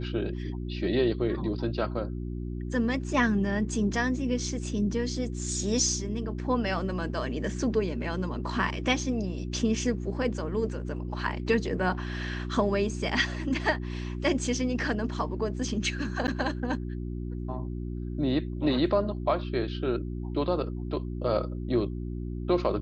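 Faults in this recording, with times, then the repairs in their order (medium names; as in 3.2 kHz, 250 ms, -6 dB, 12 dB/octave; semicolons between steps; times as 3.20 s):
hum 60 Hz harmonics 6 -34 dBFS
16.27–16.28 s: dropout 9.6 ms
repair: de-hum 60 Hz, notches 6; interpolate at 16.27 s, 9.6 ms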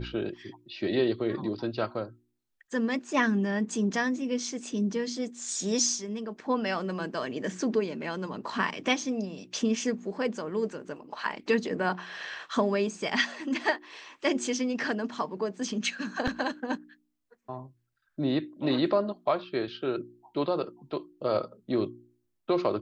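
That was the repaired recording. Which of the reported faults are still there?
nothing left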